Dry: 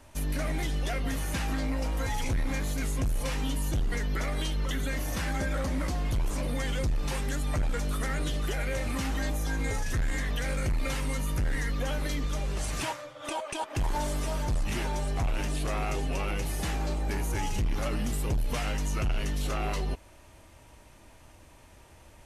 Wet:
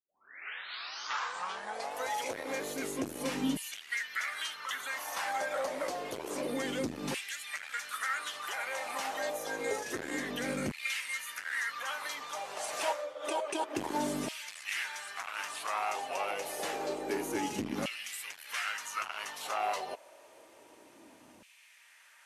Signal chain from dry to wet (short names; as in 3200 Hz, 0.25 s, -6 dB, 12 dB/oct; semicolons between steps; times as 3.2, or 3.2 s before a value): tape start at the beginning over 2.11 s; LFO high-pass saw down 0.28 Hz 220–2600 Hz; gain -2 dB